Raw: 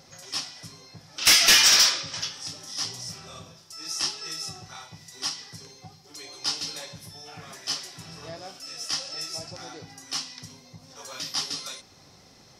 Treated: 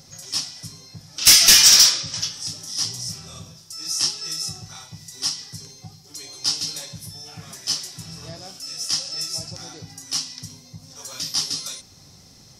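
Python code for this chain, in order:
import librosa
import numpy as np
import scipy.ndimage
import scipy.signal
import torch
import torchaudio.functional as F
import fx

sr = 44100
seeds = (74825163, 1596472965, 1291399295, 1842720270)

y = fx.bass_treble(x, sr, bass_db=10, treble_db=11)
y = F.gain(torch.from_numpy(y), -2.0).numpy()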